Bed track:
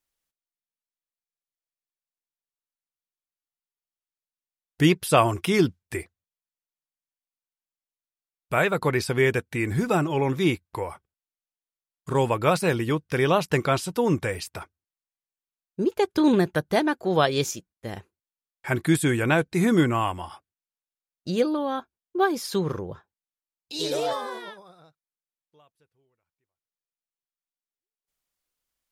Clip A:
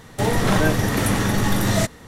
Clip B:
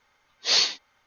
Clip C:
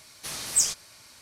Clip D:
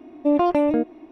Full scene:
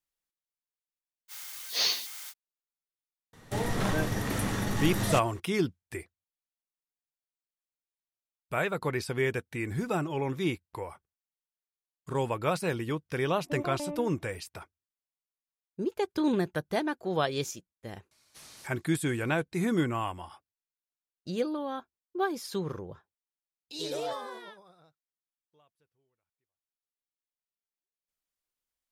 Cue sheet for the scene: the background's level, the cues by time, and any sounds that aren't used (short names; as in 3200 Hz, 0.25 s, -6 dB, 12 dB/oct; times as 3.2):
bed track -7.5 dB
1.28 add B -7 dB, fades 0.05 s + switching spikes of -25.5 dBFS
3.33 add A -10.5 dB
13.25 add D -17.5 dB
18.11 add C -15.5 dB + flipped gate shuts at -22 dBFS, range -29 dB